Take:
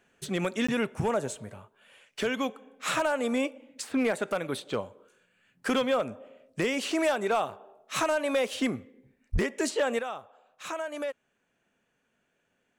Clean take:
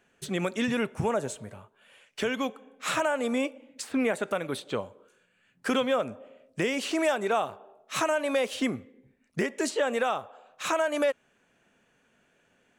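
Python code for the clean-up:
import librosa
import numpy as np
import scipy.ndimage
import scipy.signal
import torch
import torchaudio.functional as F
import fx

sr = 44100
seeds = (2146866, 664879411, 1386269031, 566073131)

y = fx.fix_declip(x, sr, threshold_db=-19.5)
y = fx.fix_deplosive(y, sr, at_s=(9.32,))
y = fx.fix_interpolate(y, sr, at_s=(0.67,), length_ms=15.0)
y = fx.gain(y, sr, db=fx.steps((0.0, 0.0), (9.99, 8.0)))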